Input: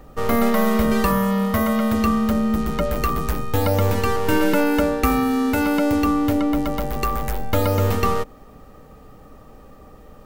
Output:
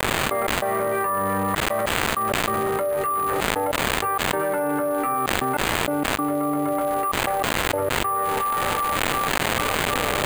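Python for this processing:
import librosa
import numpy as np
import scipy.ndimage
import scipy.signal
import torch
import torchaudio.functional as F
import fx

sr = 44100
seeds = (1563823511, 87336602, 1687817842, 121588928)

y = fx.octave_divider(x, sr, octaves=1, level_db=-1.0)
y = fx.highpass(y, sr, hz=190.0, slope=6)
y = fx.band_shelf(y, sr, hz=920.0, db=14.0, octaves=2.9)
y = fx.resonator_bank(y, sr, root=43, chord='sus4', decay_s=0.26)
y = fx.echo_split(y, sr, split_hz=810.0, low_ms=82, high_ms=368, feedback_pct=52, wet_db=-14)
y = fx.step_gate(y, sr, bpm=97, pattern='..x.xxxxxx.x', floor_db=-60.0, edge_ms=4.5)
y = fx.dmg_crackle(y, sr, seeds[0], per_s=380.0, level_db=-20.0)
y = fx.air_absorb(y, sr, metres=260.0)
y = np.repeat(scipy.signal.resample_poly(y, 1, 4), 4)[:len(y)]
y = fx.env_flatten(y, sr, amount_pct=100)
y = y * librosa.db_to_amplitude(-11.0)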